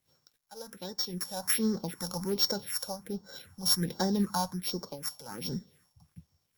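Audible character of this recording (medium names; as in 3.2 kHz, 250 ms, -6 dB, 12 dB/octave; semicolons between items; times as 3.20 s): a buzz of ramps at a fixed pitch in blocks of 8 samples; phasing stages 4, 1.3 Hz, lowest notch 320–2600 Hz; a quantiser's noise floor 12-bit, dither none; random flutter of the level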